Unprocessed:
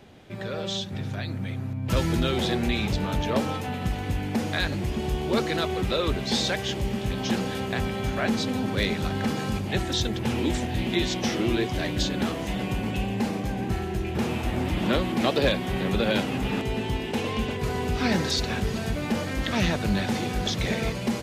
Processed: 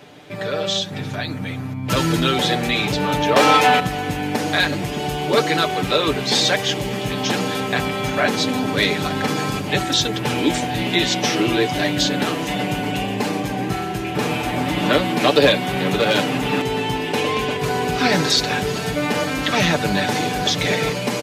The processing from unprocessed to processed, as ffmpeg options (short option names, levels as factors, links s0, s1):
-filter_complex "[0:a]asettb=1/sr,asplit=3[s0][s1][s2];[s0]atrim=end=3.364[s3];[s1]atrim=start=3.36:end=3.8,asetpts=PTS-STARTPTS,afade=t=in:d=0.004:c=qsin,afade=t=out:st=0.436:d=0.004:c=qsin,asplit=2[s4][s5];[s5]highpass=f=720:p=1,volume=10,asoftclip=type=tanh:threshold=0.237[s6];[s4][s6]amix=inputs=2:normalize=0,lowpass=f=4800:p=1,volume=0.501[s7];[s2]atrim=start=3.796[s8];[s3][s7]acrossfade=d=0.004:c1=hsin:c2=qsin[s9];[s9][s8]acrossfade=d=0.004:c1=qsin:c2=hsin,asettb=1/sr,asplit=3[s10][s11][s12];[s10]atrim=end=15.674[s13];[s11]atrim=start=15.67:end=16.18,asetpts=PTS-STARTPTS,afade=t=in:d=0.004:c=qsin,afade=t=out:st=0.506:d=0.004:c=qsin,volume=8.41,asoftclip=hard,volume=0.119[s14];[s12]atrim=start=16.176[s15];[s13][s14]acrossfade=d=0.004:c1=hsin:c2=qsin[s16];[s16][s15]acrossfade=d=0.004:c1=qsin:c2=hsin,highpass=f=250:p=1,aecho=1:1:6.8:0.65,volume=2.51"